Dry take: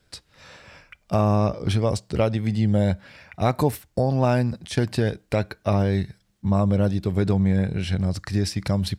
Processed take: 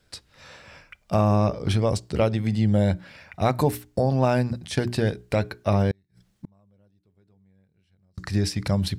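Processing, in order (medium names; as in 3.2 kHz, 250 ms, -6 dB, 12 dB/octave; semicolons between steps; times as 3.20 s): hum notches 60/120/180/240/300/360/420 Hz; 5.91–8.18 s: inverted gate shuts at -24 dBFS, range -40 dB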